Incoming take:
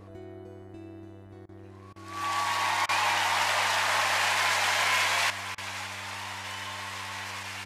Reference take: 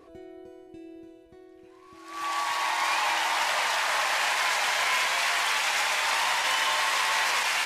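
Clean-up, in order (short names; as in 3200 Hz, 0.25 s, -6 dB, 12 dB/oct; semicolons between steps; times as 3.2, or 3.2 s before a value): de-hum 97.8 Hz, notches 21; interpolate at 1.46/1.93/2.86/5.55, 28 ms; inverse comb 0.566 s -15.5 dB; gain 0 dB, from 5.3 s +12 dB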